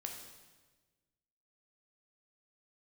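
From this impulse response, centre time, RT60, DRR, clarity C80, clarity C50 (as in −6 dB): 40 ms, 1.3 s, 1.5 dB, 6.5 dB, 4.5 dB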